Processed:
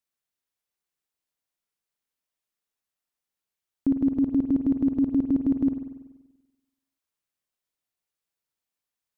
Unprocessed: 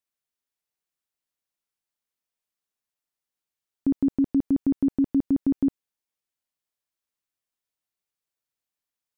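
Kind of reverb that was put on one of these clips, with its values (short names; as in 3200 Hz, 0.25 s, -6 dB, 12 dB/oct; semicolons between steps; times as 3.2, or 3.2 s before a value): spring tank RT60 1.1 s, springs 48 ms, chirp 35 ms, DRR 6.5 dB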